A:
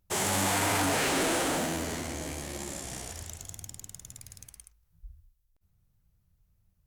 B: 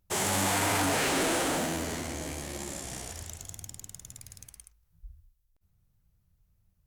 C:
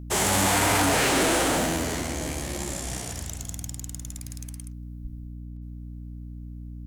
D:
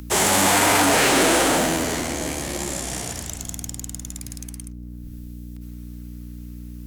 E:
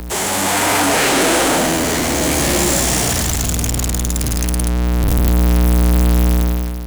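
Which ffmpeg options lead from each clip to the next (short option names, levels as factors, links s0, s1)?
-af anull
-af "aeval=exprs='val(0)+0.00794*(sin(2*PI*60*n/s)+sin(2*PI*2*60*n/s)/2+sin(2*PI*3*60*n/s)/3+sin(2*PI*4*60*n/s)/4+sin(2*PI*5*60*n/s)/5)':c=same,volume=1.88"
-filter_complex "[0:a]acrossover=split=170|1200[s0][s1][s2];[s0]asoftclip=type=tanh:threshold=0.0106[s3];[s2]acompressor=mode=upward:threshold=0.00631:ratio=2.5[s4];[s3][s1][s4]amix=inputs=3:normalize=0,volume=1.78"
-af "aeval=exprs='val(0)+0.5*0.1*sgn(val(0))':c=same,dynaudnorm=f=120:g=9:m=6.31,volume=0.668"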